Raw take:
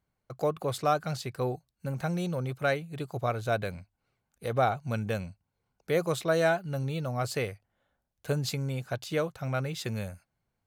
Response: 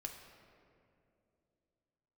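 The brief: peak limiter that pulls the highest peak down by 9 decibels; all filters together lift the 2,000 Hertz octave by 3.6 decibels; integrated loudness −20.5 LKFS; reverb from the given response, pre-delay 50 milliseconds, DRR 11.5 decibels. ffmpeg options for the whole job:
-filter_complex "[0:a]equalizer=frequency=2000:width_type=o:gain=5,alimiter=limit=-21.5dB:level=0:latency=1,asplit=2[link_01][link_02];[1:a]atrim=start_sample=2205,adelay=50[link_03];[link_02][link_03]afir=irnorm=-1:irlink=0,volume=-8.5dB[link_04];[link_01][link_04]amix=inputs=2:normalize=0,volume=12.5dB"

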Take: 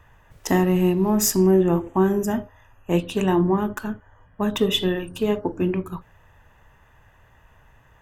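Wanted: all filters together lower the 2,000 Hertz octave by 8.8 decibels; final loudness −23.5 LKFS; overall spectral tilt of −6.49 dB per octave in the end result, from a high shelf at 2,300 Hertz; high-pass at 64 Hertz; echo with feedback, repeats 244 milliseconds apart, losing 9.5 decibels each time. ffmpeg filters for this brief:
ffmpeg -i in.wav -af "highpass=64,equalizer=frequency=2000:width_type=o:gain=-8.5,highshelf=frequency=2300:gain=-6,aecho=1:1:244|488|732|976:0.335|0.111|0.0365|0.012,volume=-1dB" out.wav

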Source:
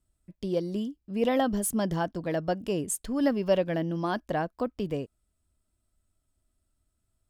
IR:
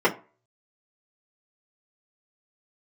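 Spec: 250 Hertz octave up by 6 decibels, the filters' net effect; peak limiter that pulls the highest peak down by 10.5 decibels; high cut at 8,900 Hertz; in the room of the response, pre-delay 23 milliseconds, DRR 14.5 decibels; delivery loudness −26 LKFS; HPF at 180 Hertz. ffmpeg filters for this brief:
-filter_complex "[0:a]highpass=180,lowpass=8900,equalizer=frequency=250:width_type=o:gain=9,alimiter=limit=-20dB:level=0:latency=1,asplit=2[link_01][link_02];[1:a]atrim=start_sample=2205,adelay=23[link_03];[link_02][link_03]afir=irnorm=-1:irlink=0,volume=-32.5dB[link_04];[link_01][link_04]amix=inputs=2:normalize=0,volume=3dB"

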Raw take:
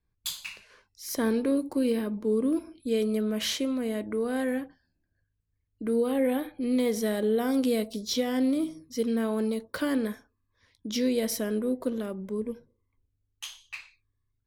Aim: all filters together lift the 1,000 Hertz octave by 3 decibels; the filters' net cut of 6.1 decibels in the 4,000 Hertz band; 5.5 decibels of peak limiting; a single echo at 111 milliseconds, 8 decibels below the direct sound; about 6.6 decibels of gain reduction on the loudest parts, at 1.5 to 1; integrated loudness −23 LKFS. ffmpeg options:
ffmpeg -i in.wav -af "equalizer=frequency=1000:width_type=o:gain=4.5,equalizer=frequency=4000:width_type=o:gain=-8.5,acompressor=threshold=-40dB:ratio=1.5,alimiter=level_in=3.5dB:limit=-24dB:level=0:latency=1,volume=-3.5dB,aecho=1:1:111:0.398,volume=13dB" out.wav

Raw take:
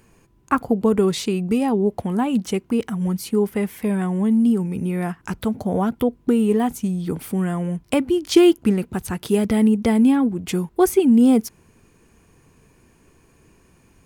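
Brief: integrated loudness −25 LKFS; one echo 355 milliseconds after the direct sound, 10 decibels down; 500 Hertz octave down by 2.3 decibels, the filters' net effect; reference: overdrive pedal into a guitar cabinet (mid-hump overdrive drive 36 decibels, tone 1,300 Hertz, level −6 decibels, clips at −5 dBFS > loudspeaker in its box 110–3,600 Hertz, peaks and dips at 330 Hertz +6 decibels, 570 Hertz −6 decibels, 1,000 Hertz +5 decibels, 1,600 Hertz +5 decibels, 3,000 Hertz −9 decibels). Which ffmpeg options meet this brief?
ffmpeg -i in.wav -filter_complex "[0:a]equalizer=frequency=500:width_type=o:gain=-7,aecho=1:1:355:0.316,asplit=2[link_01][link_02];[link_02]highpass=frequency=720:poles=1,volume=36dB,asoftclip=type=tanh:threshold=-5dB[link_03];[link_01][link_03]amix=inputs=2:normalize=0,lowpass=frequency=1300:poles=1,volume=-6dB,highpass=110,equalizer=frequency=330:width_type=q:width=4:gain=6,equalizer=frequency=570:width_type=q:width=4:gain=-6,equalizer=frequency=1000:width_type=q:width=4:gain=5,equalizer=frequency=1600:width_type=q:width=4:gain=5,equalizer=frequency=3000:width_type=q:width=4:gain=-9,lowpass=frequency=3600:width=0.5412,lowpass=frequency=3600:width=1.3066,volume=-12dB" out.wav

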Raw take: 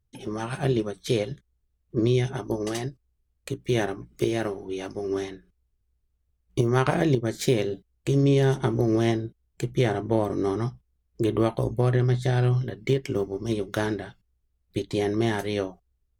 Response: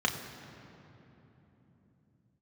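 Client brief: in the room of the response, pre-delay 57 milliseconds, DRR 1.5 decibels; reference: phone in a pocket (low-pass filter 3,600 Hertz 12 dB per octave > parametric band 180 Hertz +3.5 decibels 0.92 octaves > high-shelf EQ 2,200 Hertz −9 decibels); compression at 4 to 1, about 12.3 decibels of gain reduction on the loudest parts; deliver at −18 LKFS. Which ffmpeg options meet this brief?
-filter_complex "[0:a]acompressor=threshold=-32dB:ratio=4,asplit=2[link_01][link_02];[1:a]atrim=start_sample=2205,adelay=57[link_03];[link_02][link_03]afir=irnorm=-1:irlink=0,volume=-11.5dB[link_04];[link_01][link_04]amix=inputs=2:normalize=0,lowpass=3600,equalizer=frequency=180:width_type=o:width=0.92:gain=3.5,highshelf=frequency=2200:gain=-9,volume=15dB"

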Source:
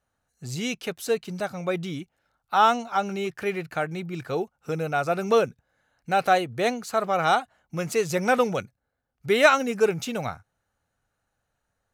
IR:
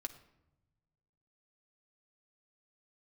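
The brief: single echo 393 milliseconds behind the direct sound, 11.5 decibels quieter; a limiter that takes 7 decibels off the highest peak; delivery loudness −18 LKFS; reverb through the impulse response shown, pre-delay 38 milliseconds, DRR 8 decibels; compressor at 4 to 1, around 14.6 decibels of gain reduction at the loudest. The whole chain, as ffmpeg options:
-filter_complex "[0:a]acompressor=threshold=-30dB:ratio=4,alimiter=level_in=0.5dB:limit=-24dB:level=0:latency=1,volume=-0.5dB,aecho=1:1:393:0.266,asplit=2[link_01][link_02];[1:a]atrim=start_sample=2205,adelay=38[link_03];[link_02][link_03]afir=irnorm=-1:irlink=0,volume=-5.5dB[link_04];[link_01][link_04]amix=inputs=2:normalize=0,volume=17dB"

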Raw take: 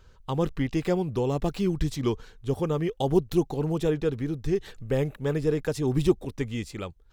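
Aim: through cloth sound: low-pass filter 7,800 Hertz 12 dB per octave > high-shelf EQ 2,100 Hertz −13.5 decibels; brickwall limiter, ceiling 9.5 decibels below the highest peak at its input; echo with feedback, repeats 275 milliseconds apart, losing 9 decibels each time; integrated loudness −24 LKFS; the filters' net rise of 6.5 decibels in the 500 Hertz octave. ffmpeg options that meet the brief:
ffmpeg -i in.wav -af "equalizer=frequency=500:width_type=o:gain=9,alimiter=limit=-14dB:level=0:latency=1,lowpass=7800,highshelf=frequency=2100:gain=-13.5,aecho=1:1:275|550|825|1100:0.355|0.124|0.0435|0.0152,volume=1.5dB" out.wav

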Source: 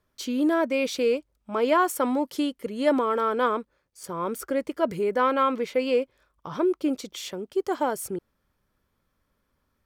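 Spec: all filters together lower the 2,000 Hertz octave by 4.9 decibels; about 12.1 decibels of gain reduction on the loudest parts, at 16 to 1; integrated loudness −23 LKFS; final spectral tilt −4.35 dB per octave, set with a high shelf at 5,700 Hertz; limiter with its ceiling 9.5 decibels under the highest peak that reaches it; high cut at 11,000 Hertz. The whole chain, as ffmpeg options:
ffmpeg -i in.wav -af "lowpass=11000,equalizer=frequency=2000:width_type=o:gain=-6.5,highshelf=frequency=5700:gain=-5,acompressor=threshold=-30dB:ratio=16,volume=16.5dB,alimiter=limit=-14.5dB:level=0:latency=1" out.wav

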